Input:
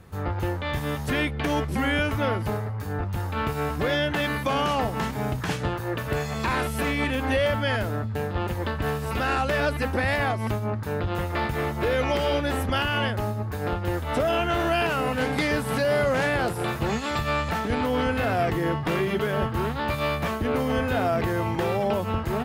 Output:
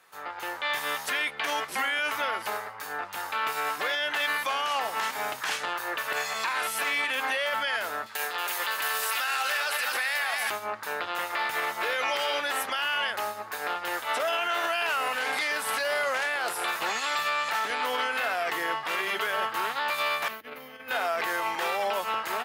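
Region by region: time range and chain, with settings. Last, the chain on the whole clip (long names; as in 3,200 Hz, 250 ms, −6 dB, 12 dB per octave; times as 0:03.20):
0:08.06–0:10.50: spectral tilt +3 dB per octave + echo with a time of its own for lows and highs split 820 Hz, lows 104 ms, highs 230 ms, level −7.5 dB
0:20.28–0:20.91: drawn EQ curve 160 Hz 0 dB, 420 Hz −9 dB, 1,000 Hz −17 dB, 2,100 Hz −10 dB, 4,500 Hz −13 dB, 8,000 Hz −20 dB, 15,000 Hz −3 dB + compressor whose output falls as the input rises −32 dBFS, ratio −0.5
whole clip: high-pass filter 1,000 Hz 12 dB per octave; brickwall limiter −25 dBFS; automatic gain control gain up to 6 dB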